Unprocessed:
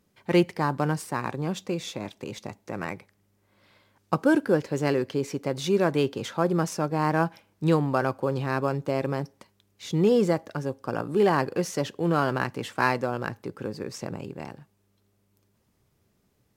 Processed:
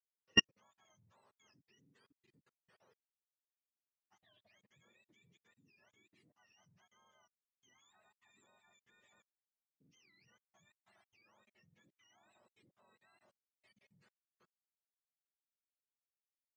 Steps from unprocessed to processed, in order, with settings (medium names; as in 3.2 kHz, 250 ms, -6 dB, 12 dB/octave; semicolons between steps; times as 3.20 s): spectrum inverted on a logarithmic axis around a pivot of 990 Hz; high-pass 110 Hz 12 dB/octave; treble shelf 4.1 kHz -9 dB; level held to a coarse grid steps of 21 dB; upward expansion 2.5:1, over -58 dBFS